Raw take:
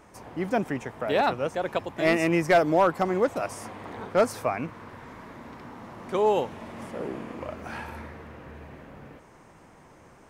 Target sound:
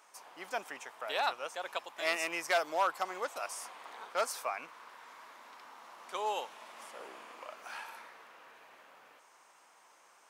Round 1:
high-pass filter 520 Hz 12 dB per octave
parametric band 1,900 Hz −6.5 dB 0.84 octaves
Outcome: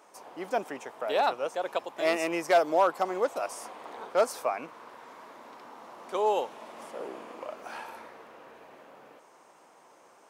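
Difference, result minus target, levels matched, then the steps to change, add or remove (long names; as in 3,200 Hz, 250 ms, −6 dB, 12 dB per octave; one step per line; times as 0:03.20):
500 Hz band +4.0 dB
change: high-pass filter 1,200 Hz 12 dB per octave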